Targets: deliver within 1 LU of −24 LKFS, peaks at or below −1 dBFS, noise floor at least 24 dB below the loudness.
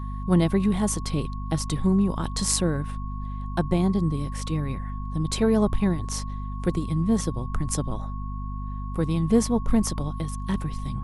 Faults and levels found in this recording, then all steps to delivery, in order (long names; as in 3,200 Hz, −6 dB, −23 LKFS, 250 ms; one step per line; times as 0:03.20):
mains hum 50 Hz; hum harmonics up to 250 Hz; level of the hum −29 dBFS; interfering tone 1,100 Hz; level of the tone −40 dBFS; integrated loudness −26.0 LKFS; sample peak −4.5 dBFS; target loudness −24.0 LKFS
→ mains-hum notches 50/100/150/200/250 Hz
notch filter 1,100 Hz, Q 30
level +2 dB